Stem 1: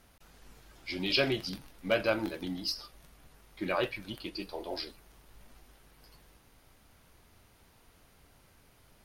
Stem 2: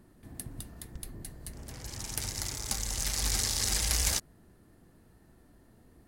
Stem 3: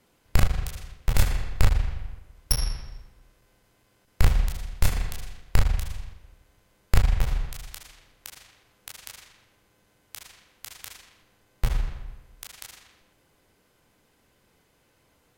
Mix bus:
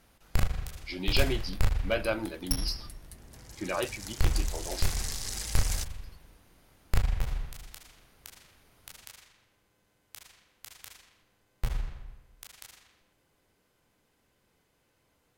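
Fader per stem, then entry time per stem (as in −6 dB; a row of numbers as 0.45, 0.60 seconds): −1.0, −7.0, −6.5 decibels; 0.00, 1.65, 0.00 seconds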